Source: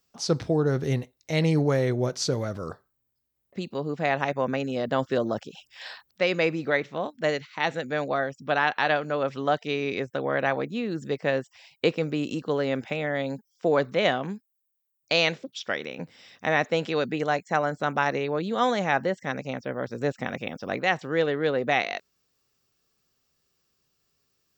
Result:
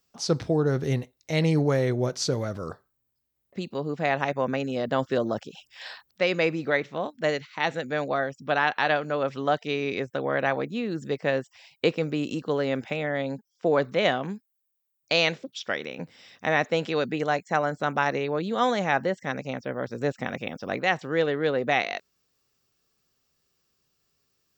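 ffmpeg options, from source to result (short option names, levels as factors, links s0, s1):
-filter_complex "[0:a]asettb=1/sr,asplit=3[s0][s1][s2];[s0]atrim=end=13.034[s3];[s1]atrim=start=13.03:end=13.82,asetpts=PTS-STARTPTS,afade=t=in:d=0.004:c=qsin,afade=t=out:st=0.786:d=0.004:c=qsin,highshelf=f=5800:g=-6.5[s4];[s2]atrim=start=13.816[s5];[s3][s4]acrossfade=d=0.004:c1=hsin:c2=qsin[s6];[s6][s5]acrossfade=d=0.004:c1=qsin:c2=hsin"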